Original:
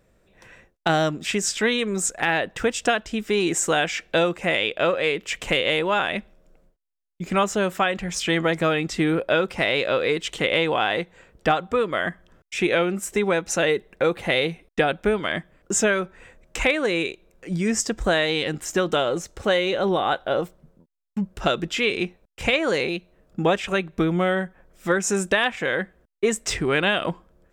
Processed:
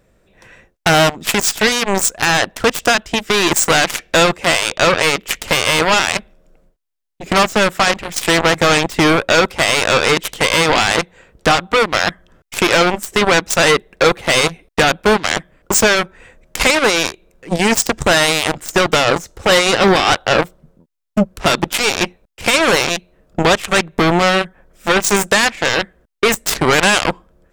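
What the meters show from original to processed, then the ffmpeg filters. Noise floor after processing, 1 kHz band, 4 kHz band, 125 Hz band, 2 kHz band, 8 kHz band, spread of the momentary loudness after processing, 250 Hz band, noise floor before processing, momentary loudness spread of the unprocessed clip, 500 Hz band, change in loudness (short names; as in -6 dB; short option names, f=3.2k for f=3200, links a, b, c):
-59 dBFS, +10.0 dB, +11.0 dB, +7.5 dB, +9.5 dB, +10.5 dB, 8 LU, +6.0 dB, -64 dBFS, 7 LU, +6.5 dB, +9.0 dB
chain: -af "apsyclip=18.5dB,aeval=exprs='1.12*(cos(1*acos(clip(val(0)/1.12,-1,1)))-cos(1*PI/2))+0.501*(cos(3*acos(clip(val(0)/1.12,-1,1)))-cos(3*PI/2))+0.0251*(cos(6*acos(clip(val(0)/1.12,-1,1)))-cos(6*PI/2))':c=same,volume=-4dB"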